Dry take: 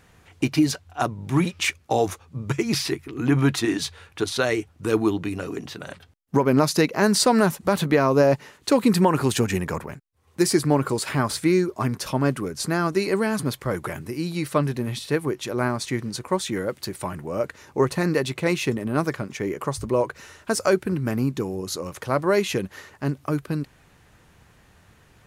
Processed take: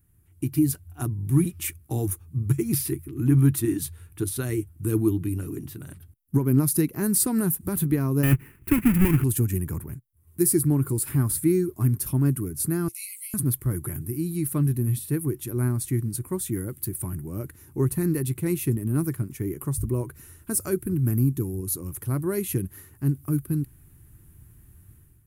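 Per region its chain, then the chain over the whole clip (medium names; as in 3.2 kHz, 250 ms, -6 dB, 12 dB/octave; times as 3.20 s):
8.23–9.24 s: square wave that keeps the level + FFT filter 330 Hz 0 dB, 640 Hz -5 dB, 2.6 kHz +9 dB, 3.7 kHz -12 dB
12.88–13.34 s: brick-wall FIR high-pass 2 kHz + doubling 16 ms -2.5 dB + tape noise reduction on one side only encoder only
whole clip: FFT filter 120 Hz 0 dB, 200 Hz -10 dB, 340 Hz -7 dB, 530 Hz -26 dB, 1.4 kHz -20 dB, 4.2 kHz -22 dB, 6.4 kHz -17 dB, 11 kHz +6 dB; level rider gain up to 11.5 dB; trim -4.5 dB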